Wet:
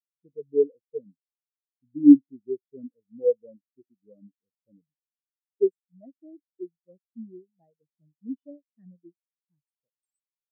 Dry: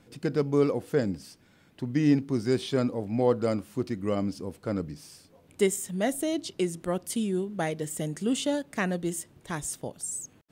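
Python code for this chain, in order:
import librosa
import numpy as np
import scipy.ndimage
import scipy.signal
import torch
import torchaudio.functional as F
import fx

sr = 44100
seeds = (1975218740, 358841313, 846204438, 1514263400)

y = fx.spectral_expand(x, sr, expansion=4.0)
y = y * 10.0 ** (8.0 / 20.0)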